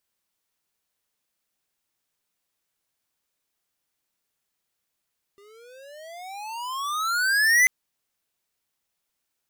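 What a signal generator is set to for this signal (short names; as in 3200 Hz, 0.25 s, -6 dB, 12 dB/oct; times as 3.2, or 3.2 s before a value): gliding synth tone square, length 2.29 s, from 396 Hz, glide +28.5 st, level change +36 dB, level -16 dB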